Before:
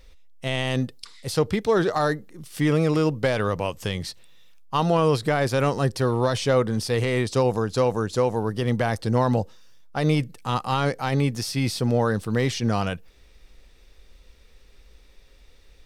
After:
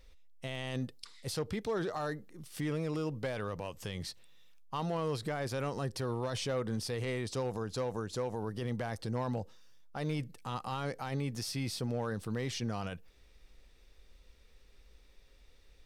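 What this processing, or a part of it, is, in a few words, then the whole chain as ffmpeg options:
clipper into limiter: -af "asoftclip=type=hard:threshold=-13.5dB,alimiter=limit=-19.5dB:level=0:latency=1:release=76,volume=-8dB"

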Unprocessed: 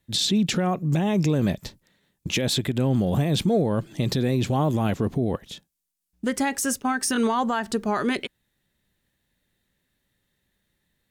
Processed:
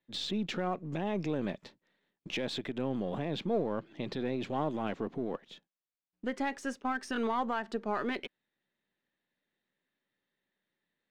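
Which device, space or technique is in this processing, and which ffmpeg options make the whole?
crystal radio: -filter_complex "[0:a]asettb=1/sr,asplit=3[a][b][c];[a]atrim=end=3.194[d];[b]atrim=start=3.19:end=4.4,asetpts=PTS-STARTPTS,afade=t=in:d=0.004:c=qsin,afade=t=out:st=1.206:d=0.004:c=qsin,lowpass=5.4k[e];[c]atrim=start=4.396[f];[d][e]acrossfade=d=0.004:c1=hsin:c2=qsin[g];[g][f]acrossfade=d=0.004:c1=qsin:c2=hsin,highpass=250,lowpass=3.2k,aeval=exprs='if(lt(val(0),0),0.708*val(0),val(0))':c=same,volume=-6.5dB"

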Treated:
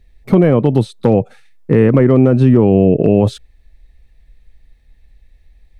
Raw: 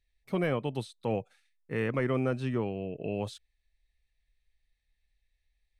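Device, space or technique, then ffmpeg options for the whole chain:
mastering chain: -af "equalizer=f=270:t=o:w=2:g=3,acompressor=threshold=-32dB:ratio=3,tiltshelf=f=1.1k:g=7.5,asoftclip=type=hard:threshold=-19dB,alimiter=level_in=22.5dB:limit=-1dB:release=50:level=0:latency=1,volume=-1dB"

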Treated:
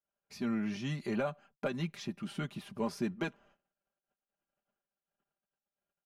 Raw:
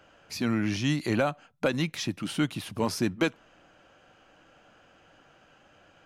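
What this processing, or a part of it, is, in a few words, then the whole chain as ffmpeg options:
behind a face mask: -af "agate=range=-36dB:threshold=-54dB:ratio=16:detection=peak,highshelf=f=2.4k:g=-8,aecho=1:1:5:0.7,volume=-8.5dB"

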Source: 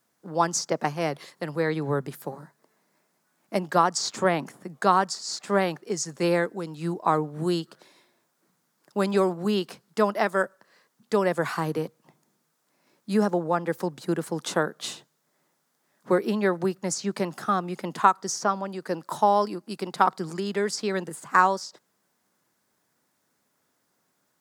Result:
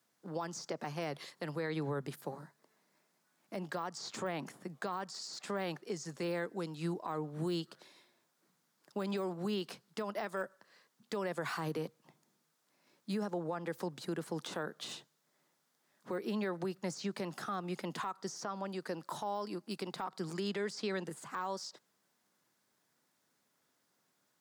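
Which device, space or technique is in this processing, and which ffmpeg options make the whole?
broadcast voice chain: -filter_complex "[0:a]asettb=1/sr,asplit=3[a][b][c];[a]atrim=end=20.484[d];[b]atrim=start=20.48:end=21.06,asetpts=PTS-STARTPTS,afade=t=in:d=0.004:c=qsin,afade=t=out:st=0.576:d=0.004:c=qsin,lowpass=10k[e];[c]atrim=start=21.056[f];[d][e]acrossfade=d=0.004:c1=hsin:c2=qsin[g];[g][f]acrossfade=d=0.004:c1=qsin:c2=hsin,highpass=f=87:w=0.5412,highpass=f=87:w=1.3066,deesser=0.9,acompressor=threshold=-24dB:ratio=6,equalizer=f=3.6k:t=o:w=1.6:g=4,alimiter=limit=-22dB:level=0:latency=1:release=65,volume=-6dB"

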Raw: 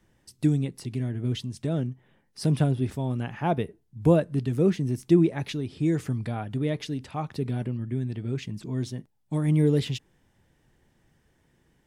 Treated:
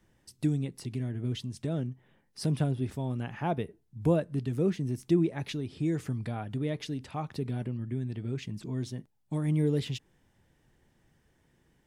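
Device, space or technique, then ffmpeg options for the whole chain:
parallel compression: -filter_complex "[0:a]asplit=2[a][b];[b]acompressor=threshold=-31dB:ratio=6,volume=-2.5dB[c];[a][c]amix=inputs=2:normalize=0,volume=-7dB"

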